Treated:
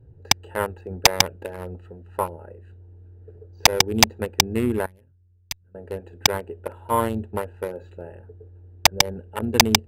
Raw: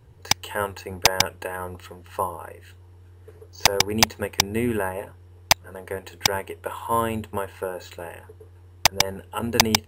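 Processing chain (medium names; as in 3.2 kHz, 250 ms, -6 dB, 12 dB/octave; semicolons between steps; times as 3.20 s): local Wiener filter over 41 samples; 4.86–5.75 s: amplifier tone stack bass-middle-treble 6-0-2; trim +2.5 dB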